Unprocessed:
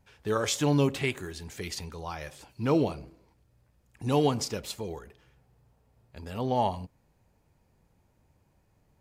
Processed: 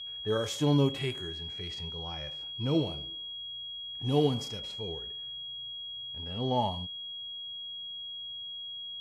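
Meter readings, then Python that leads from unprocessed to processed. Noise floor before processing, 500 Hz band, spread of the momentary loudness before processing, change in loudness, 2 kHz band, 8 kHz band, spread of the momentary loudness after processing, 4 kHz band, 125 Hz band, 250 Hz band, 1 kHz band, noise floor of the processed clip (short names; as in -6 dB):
-69 dBFS, -2.5 dB, 16 LU, -3.0 dB, -7.5 dB, -10.0 dB, 11 LU, +8.0 dB, -0.5 dB, -1.5 dB, -4.5 dB, -41 dBFS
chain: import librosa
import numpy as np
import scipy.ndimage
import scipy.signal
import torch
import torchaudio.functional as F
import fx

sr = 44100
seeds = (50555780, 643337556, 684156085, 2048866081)

y = fx.env_lowpass(x, sr, base_hz=2800.0, full_db=-25.5)
y = y + 10.0 ** (-38.0 / 20.0) * np.sin(2.0 * np.pi * 3300.0 * np.arange(len(y)) / sr)
y = fx.hpss(y, sr, part='percussive', gain_db=-13)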